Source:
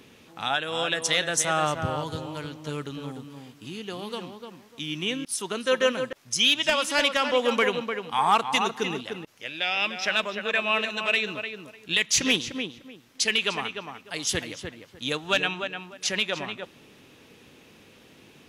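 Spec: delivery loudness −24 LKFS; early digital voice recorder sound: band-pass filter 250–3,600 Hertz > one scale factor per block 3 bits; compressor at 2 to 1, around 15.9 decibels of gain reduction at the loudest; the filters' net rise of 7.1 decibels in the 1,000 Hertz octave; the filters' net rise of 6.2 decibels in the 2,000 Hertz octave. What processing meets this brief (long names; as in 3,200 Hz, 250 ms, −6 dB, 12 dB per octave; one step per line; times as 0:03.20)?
parametric band 1,000 Hz +7 dB
parametric band 2,000 Hz +7 dB
downward compressor 2 to 1, threshold −39 dBFS
band-pass filter 250–3,600 Hz
one scale factor per block 3 bits
level +10 dB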